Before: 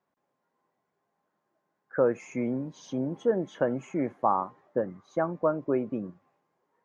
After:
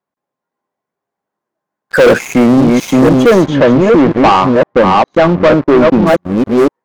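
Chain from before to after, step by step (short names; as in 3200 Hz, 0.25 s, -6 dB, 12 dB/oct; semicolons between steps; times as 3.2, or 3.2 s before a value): reverse delay 0.515 s, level -4 dB; sample leveller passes 5; 3.46–6.07 air absorption 130 m; gain +8 dB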